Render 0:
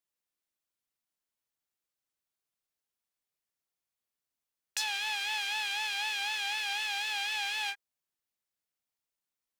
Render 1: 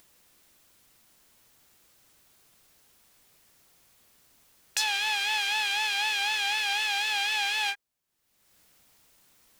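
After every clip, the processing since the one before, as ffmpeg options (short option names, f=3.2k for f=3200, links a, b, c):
-af "lowshelf=f=320:g=5.5,acompressor=mode=upward:threshold=-49dB:ratio=2.5,volume=5.5dB"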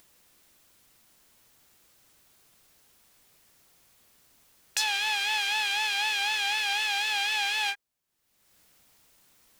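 -af anull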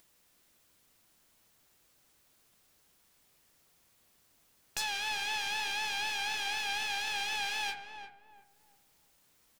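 -filter_complex "[0:a]aeval=exprs='clip(val(0),-1,0.0237)':c=same,flanger=delay=6.1:depth=6.7:regen=-81:speed=0.68:shape=sinusoidal,asplit=2[a][b];[b]adelay=349,lowpass=f=1k:p=1,volume=-5.5dB,asplit=2[c][d];[d]adelay=349,lowpass=f=1k:p=1,volume=0.36,asplit=2[e][f];[f]adelay=349,lowpass=f=1k:p=1,volume=0.36,asplit=2[g][h];[h]adelay=349,lowpass=f=1k:p=1,volume=0.36[i];[a][c][e][g][i]amix=inputs=5:normalize=0,volume=-1.5dB"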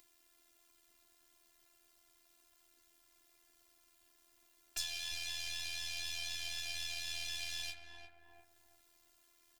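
-filter_complex "[0:a]tremolo=f=83:d=0.919,acrossover=split=120|3000[a][b][c];[b]acompressor=threshold=-56dB:ratio=5[d];[a][d][c]amix=inputs=3:normalize=0,afftfilt=real='hypot(re,im)*cos(PI*b)':imag='0':win_size=512:overlap=0.75,volume=5.5dB"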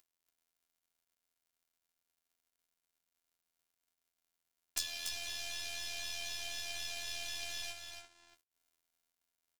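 -filter_complex "[0:a]aeval=exprs='0.158*(cos(1*acos(clip(val(0)/0.158,-1,1)))-cos(1*PI/2))+0.0316*(cos(3*acos(clip(val(0)/0.158,-1,1)))-cos(3*PI/2))+0.0141*(cos(4*acos(clip(val(0)/0.158,-1,1)))-cos(4*PI/2))+0.00447*(cos(5*acos(clip(val(0)/0.158,-1,1)))-cos(5*PI/2))':c=same,aeval=exprs='sgn(val(0))*max(abs(val(0))-0.00178,0)':c=same,asplit=2[a][b];[b]aecho=0:1:286:0.473[c];[a][c]amix=inputs=2:normalize=0,volume=8.5dB"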